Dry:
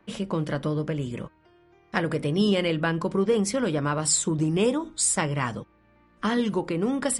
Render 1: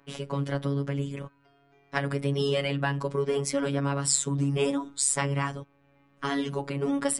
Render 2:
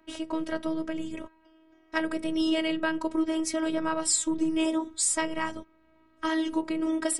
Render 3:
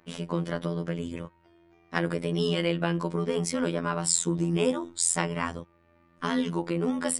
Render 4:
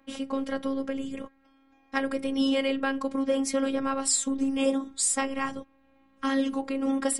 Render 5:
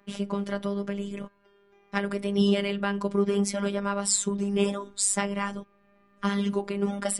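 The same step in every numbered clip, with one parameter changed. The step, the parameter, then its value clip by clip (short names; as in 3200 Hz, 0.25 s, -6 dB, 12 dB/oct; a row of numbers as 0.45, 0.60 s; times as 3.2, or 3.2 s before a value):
robotiser, frequency: 140, 320, 85, 270, 200 Hz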